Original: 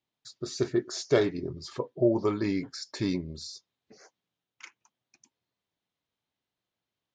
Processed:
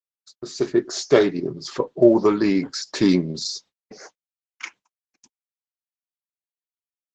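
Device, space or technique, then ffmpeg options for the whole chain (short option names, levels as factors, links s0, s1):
video call: -af "highpass=f=150:w=0.5412,highpass=f=150:w=1.3066,dynaudnorm=f=390:g=3:m=4.73,agate=range=0.00224:threshold=0.00501:ratio=16:detection=peak" -ar 48000 -c:a libopus -b:a 12k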